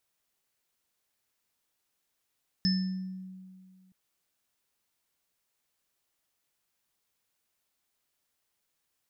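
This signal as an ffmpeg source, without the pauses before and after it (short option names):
-f lavfi -i "aevalsrc='0.0708*pow(10,-3*t/2.08)*sin(2*PI*187*t)+0.00944*pow(10,-3*t/0.74)*sin(2*PI*1780*t)+0.0562*pow(10,-3*t/0.57)*sin(2*PI*5240*t)':d=1.27:s=44100"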